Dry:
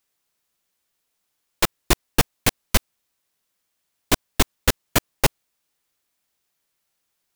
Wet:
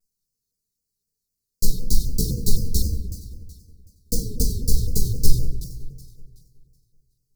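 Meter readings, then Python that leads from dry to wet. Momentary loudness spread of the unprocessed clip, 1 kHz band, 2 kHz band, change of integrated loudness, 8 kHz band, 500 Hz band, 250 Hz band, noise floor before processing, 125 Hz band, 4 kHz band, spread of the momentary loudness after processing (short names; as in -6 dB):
4 LU, under -40 dB, under -40 dB, -3.0 dB, -3.0 dB, -9.0 dB, -2.0 dB, -76 dBFS, +4.5 dB, -7.5 dB, 17 LU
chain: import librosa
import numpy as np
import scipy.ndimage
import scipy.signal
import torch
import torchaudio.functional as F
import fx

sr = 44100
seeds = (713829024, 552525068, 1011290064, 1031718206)

y = fx.lower_of_two(x, sr, delay_ms=1.5)
y = fx.dereverb_blind(y, sr, rt60_s=0.62)
y = scipy.signal.sosfilt(scipy.signal.cheby1(5, 1.0, [450.0, 4300.0], 'bandstop', fs=sr, output='sos'), y)
y = fx.low_shelf(y, sr, hz=220.0, db=6.0)
y = fx.echo_alternate(y, sr, ms=187, hz=1300.0, feedback_pct=58, wet_db=-10)
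y = fx.room_shoebox(y, sr, seeds[0], volume_m3=210.0, walls='mixed', distance_m=1.3)
y = fx.vibrato_shape(y, sr, shape='saw_down', rate_hz=3.9, depth_cents=160.0)
y = y * 10.0 ** (-4.5 / 20.0)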